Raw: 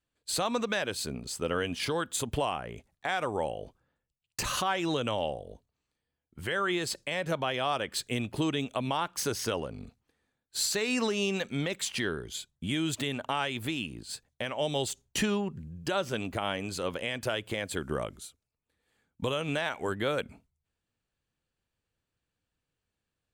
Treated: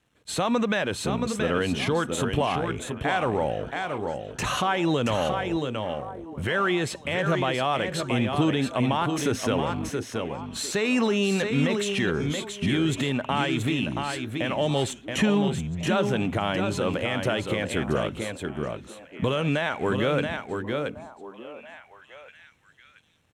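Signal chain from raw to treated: companding laws mixed up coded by mu; low-pass 11 kHz 12 dB/octave; delay 676 ms -7 dB; in parallel at +0.5 dB: peak limiter -24.5 dBFS, peak gain reduction 8.5 dB; on the sum: high-pass 180 Hz 6 dB/octave; tone controls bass +8 dB, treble -7 dB; band-stop 4.7 kHz, Q 5.1; repeats whose band climbs or falls 700 ms, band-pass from 310 Hz, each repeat 1.4 oct, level -9.5 dB

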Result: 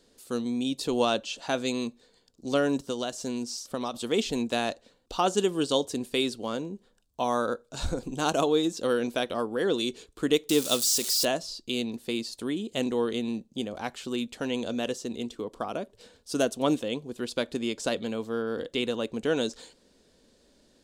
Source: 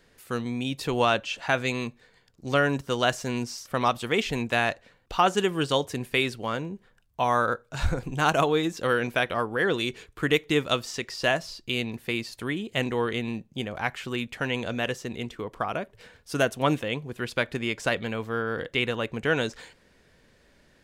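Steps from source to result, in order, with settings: 10.49–11.25 s: zero-crossing glitches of -20 dBFS; graphic EQ 125/250/500/2000/4000/8000 Hz -7/+8/+4/-9/+7/+8 dB; 2.80–3.94 s: compression 6:1, threshold -23 dBFS, peak gain reduction 7.5 dB; trim -5 dB

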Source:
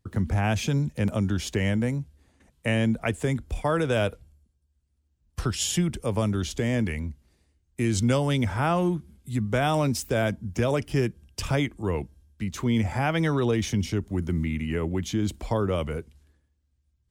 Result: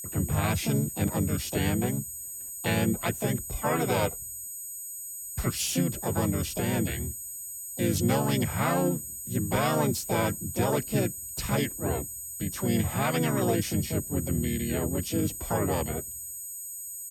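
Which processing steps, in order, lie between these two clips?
whistle 8.2 kHz -34 dBFS; harmony voices -3 st -3 dB, +7 st -2 dB, +12 st -17 dB; trim -5.5 dB

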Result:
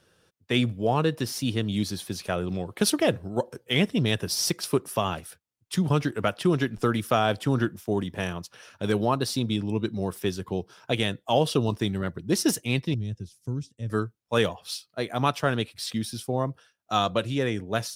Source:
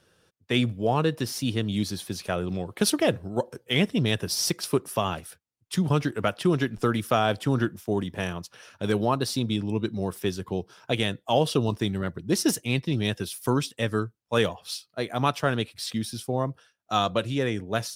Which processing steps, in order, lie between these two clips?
12.94–13.90 s: FFT filter 110 Hz 0 dB, 1.1 kHz -26 dB, 3.6 kHz -22 dB, 6.4 kHz -12 dB, 14 kHz -29 dB

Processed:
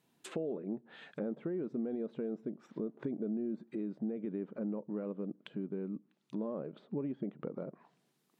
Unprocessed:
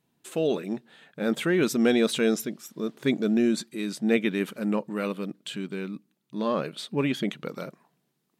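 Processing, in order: peak limiter -17.5 dBFS, peak gain reduction 8 dB; compression 5:1, threshold -33 dBFS, peak gain reduction 11 dB; low-pass that closes with the level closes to 570 Hz, closed at -36 dBFS; bass shelf 120 Hz -11 dB; trim +1 dB

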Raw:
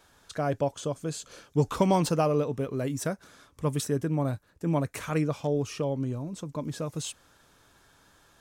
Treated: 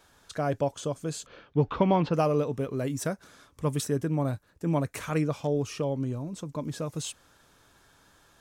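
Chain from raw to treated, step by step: 1.26–2.14 s: low-pass 3.4 kHz 24 dB/octave

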